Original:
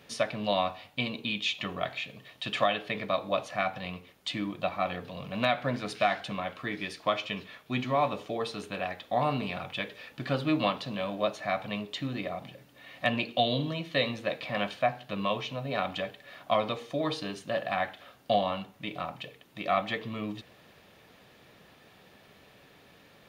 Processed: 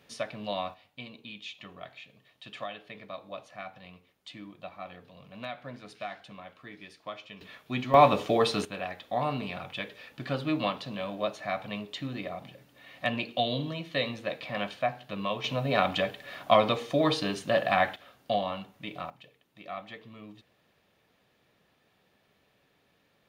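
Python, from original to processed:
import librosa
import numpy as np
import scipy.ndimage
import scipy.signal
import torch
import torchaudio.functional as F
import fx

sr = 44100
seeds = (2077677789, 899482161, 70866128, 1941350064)

y = fx.gain(x, sr, db=fx.steps((0.0, -5.5), (0.74, -12.0), (7.41, -1.0), (7.94, 8.5), (8.65, -2.0), (15.44, 5.5), (17.96, -2.5), (19.1, -12.0)))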